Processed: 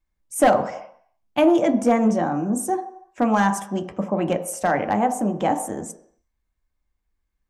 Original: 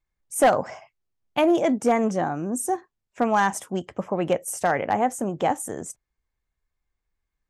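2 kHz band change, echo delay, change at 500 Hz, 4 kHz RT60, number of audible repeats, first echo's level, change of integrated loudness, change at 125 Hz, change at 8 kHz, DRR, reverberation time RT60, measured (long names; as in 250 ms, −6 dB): +0.5 dB, no echo audible, +1.5 dB, 0.70 s, no echo audible, no echo audible, +2.5 dB, +4.0 dB, 0.0 dB, 6.0 dB, 0.70 s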